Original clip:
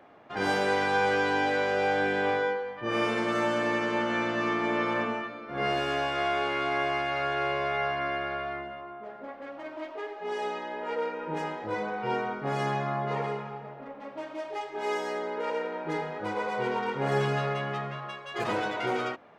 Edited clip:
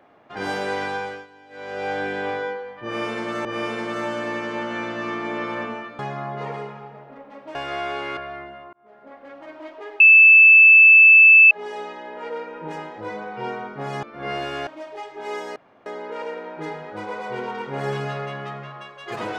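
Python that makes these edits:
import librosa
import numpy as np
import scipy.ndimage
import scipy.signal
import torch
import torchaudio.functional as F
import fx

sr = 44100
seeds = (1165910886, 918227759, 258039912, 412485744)

y = fx.edit(x, sr, fx.fade_down_up(start_s=0.85, length_s=1.06, db=-23.0, fade_s=0.42),
    fx.repeat(start_s=2.84, length_s=0.61, count=2),
    fx.swap(start_s=5.38, length_s=0.64, other_s=12.69, other_length_s=1.56),
    fx.cut(start_s=6.64, length_s=1.7),
    fx.fade_in_span(start_s=8.9, length_s=0.72, curve='qsin'),
    fx.insert_tone(at_s=10.17, length_s=1.51, hz=2630.0, db=-6.5),
    fx.insert_room_tone(at_s=15.14, length_s=0.3), tone=tone)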